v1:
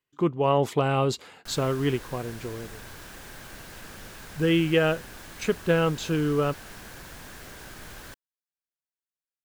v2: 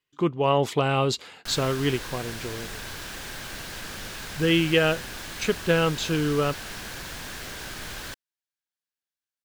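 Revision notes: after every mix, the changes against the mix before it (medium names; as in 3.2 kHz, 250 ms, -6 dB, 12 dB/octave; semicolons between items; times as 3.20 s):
background +4.5 dB; master: add peaking EQ 3.8 kHz +6 dB 2 oct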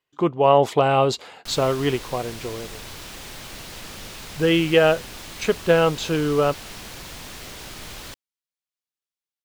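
speech: add peaking EQ 690 Hz +9 dB 1.4 oct; background: add peaking EQ 1.6 kHz -9 dB 0.28 oct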